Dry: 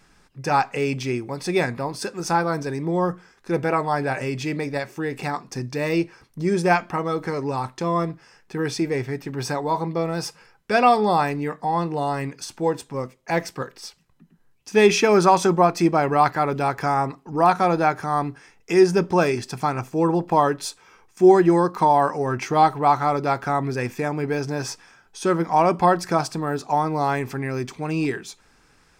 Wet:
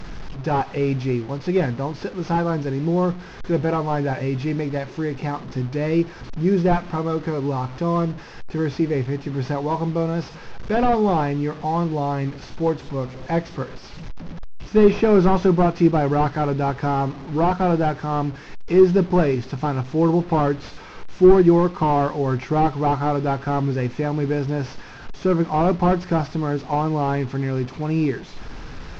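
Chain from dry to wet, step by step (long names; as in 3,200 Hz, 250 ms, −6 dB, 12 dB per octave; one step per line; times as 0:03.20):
linear delta modulator 32 kbit/s, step −32 dBFS
spectral tilt −2.5 dB per octave
level −1.5 dB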